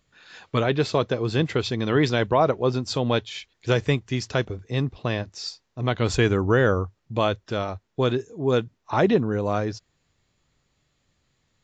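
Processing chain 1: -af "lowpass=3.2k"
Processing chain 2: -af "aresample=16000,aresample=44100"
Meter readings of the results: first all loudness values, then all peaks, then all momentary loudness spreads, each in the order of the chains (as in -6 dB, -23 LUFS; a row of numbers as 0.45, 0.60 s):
-24.5, -24.5 LUFS; -7.5, -7.5 dBFS; 9, 9 LU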